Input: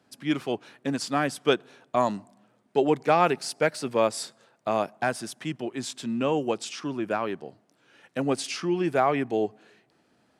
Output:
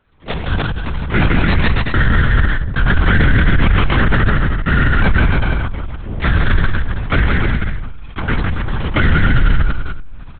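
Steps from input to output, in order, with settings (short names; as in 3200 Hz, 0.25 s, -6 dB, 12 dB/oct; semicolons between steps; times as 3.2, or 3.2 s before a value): Wiener smoothing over 41 samples; HPF 110 Hz 12 dB/oct; resonant low shelf 540 Hz -11.5 dB, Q 3; full-wave rectifier; companded quantiser 8-bit; bouncing-ball echo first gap 0.16 s, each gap 0.8×, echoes 5; reverb RT60 0.60 s, pre-delay 6 ms, DRR 12.5 dB; LPC vocoder at 8 kHz whisper; maximiser +14.5 dB; sustainer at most 32 dB/s; gain -3.5 dB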